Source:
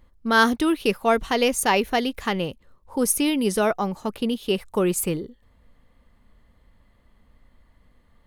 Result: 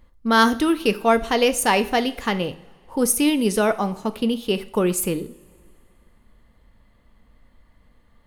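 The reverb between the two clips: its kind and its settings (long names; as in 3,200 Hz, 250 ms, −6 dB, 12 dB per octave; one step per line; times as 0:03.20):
coupled-rooms reverb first 0.45 s, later 2.3 s, from −19 dB, DRR 11 dB
level +1.5 dB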